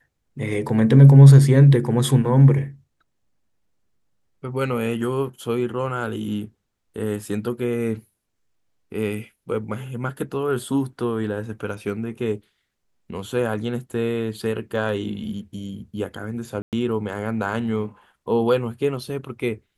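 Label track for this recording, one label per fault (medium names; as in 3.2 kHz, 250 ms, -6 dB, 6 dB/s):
16.620000	16.730000	dropout 108 ms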